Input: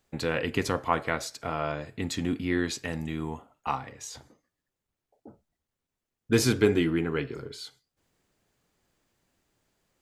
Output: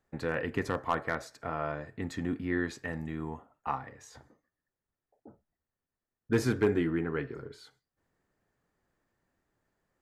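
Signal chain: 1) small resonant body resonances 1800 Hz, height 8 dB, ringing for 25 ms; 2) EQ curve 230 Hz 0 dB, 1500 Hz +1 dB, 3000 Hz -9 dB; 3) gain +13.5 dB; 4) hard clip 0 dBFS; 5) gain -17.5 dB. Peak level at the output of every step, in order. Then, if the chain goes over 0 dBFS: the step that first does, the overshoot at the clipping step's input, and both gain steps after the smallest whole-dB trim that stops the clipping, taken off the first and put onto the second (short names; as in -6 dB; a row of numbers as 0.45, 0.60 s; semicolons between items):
-7.5, -7.5, +6.0, 0.0, -17.5 dBFS; step 3, 6.0 dB; step 3 +7.5 dB, step 5 -11.5 dB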